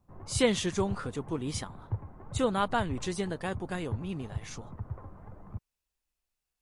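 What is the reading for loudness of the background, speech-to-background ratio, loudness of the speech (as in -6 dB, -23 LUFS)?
-42.5 LUFS, 10.5 dB, -32.0 LUFS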